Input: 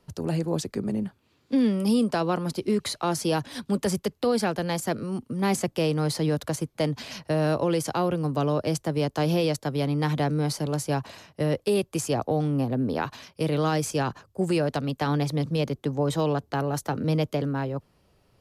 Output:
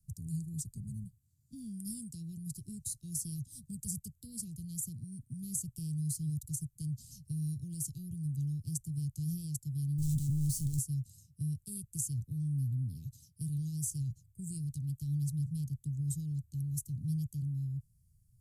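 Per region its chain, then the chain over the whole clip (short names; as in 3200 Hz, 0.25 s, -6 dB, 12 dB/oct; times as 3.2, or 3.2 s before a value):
9.98–10.79 G.711 law mismatch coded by mu + overdrive pedal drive 35 dB, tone 2200 Hz, clips at -14.5 dBFS
whole clip: elliptic band-stop 130–7800 Hz, stop band 70 dB; dynamic EQ 290 Hz, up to -3 dB, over -45 dBFS, Q 0.75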